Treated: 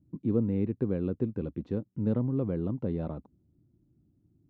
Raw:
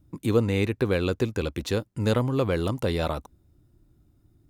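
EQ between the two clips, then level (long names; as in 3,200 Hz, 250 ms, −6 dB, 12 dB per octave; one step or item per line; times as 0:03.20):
resonant band-pass 200 Hz, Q 1.3
high-frequency loss of the air 100 metres
0.0 dB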